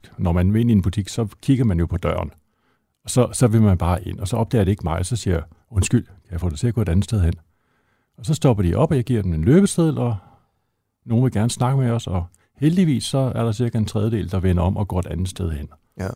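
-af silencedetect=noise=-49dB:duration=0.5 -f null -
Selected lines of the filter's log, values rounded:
silence_start: 2.38
silence_end: 3.05 | silence_duration: 0.67
silence_start: 7.43
silence_end: 8.18 | silence_duration: 0.76
silence_start: 10.38
silence_end: 11.06 | silence_duration: 0.67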